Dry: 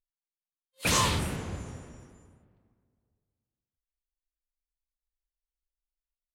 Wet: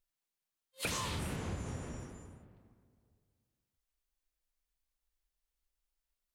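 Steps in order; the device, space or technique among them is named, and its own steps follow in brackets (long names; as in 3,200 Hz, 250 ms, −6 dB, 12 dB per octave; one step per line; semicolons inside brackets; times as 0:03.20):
serial compression, leveller first (downward compressor 2 to 1, threshold −28 dBFS, peak gain reduction 4.5 dB; downward compressor 5 to 1, threshold −41 dBFS, peak gain reduction 14 dB)
level +5 dB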